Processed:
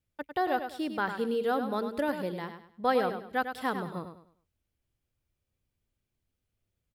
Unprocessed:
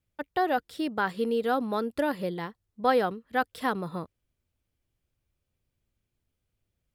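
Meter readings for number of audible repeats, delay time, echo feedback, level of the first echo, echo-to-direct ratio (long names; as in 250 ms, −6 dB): 3, 101 ms, 31%, −8.5 dB, −8.0 dB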